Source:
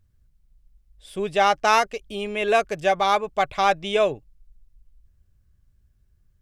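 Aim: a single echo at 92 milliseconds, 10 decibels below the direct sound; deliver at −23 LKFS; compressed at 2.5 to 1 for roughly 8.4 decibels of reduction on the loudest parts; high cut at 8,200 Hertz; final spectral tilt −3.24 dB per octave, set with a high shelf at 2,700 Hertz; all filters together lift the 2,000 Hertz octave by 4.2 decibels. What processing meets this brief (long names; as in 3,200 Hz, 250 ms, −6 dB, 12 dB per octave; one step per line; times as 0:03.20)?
low-pass filter 8,200 Hz
parametric band 2,000 Hz +4 dB
high-shelf EQ 2,700 Hz +3.5 dB
downward compressor 2.5 to 1, threshold −25 dBFS
single-tap delay 92 ms −10 dB
level +4 dB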